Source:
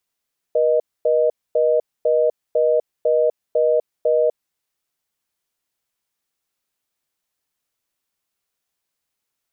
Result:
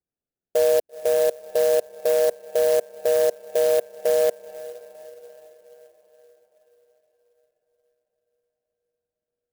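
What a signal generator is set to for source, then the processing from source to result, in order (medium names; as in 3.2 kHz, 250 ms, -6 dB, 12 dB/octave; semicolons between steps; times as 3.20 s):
call progress tone reorder tone, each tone -16.5 dBFS 4.00 s
local Wiener filter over 41 samples; echo that smears into a reverb 460 ms, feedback 55%, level -15 dB; sampling jitter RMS 0.047 ms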